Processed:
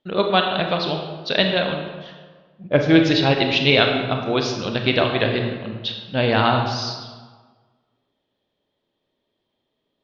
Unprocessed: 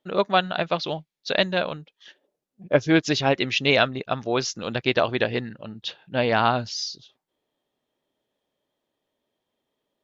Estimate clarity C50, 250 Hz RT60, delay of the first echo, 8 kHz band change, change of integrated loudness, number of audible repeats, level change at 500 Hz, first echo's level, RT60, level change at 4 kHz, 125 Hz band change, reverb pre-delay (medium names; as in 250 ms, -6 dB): 4.5 dB, 1.5 s, no echo, no reading, +4.0 dB, no echo, +3.0 dB, no echo, 1.5 s, +5.5 dB, +7.0 dB, 27 ms